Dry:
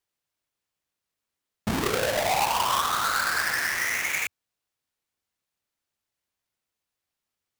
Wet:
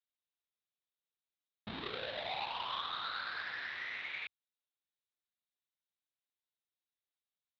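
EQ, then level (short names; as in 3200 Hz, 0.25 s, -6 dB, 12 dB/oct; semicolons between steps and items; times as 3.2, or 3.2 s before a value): band-pass 3800 Hz, Q 6.7; air absorption 380 m; tilt -4.5 dB/oct; +13.5 dB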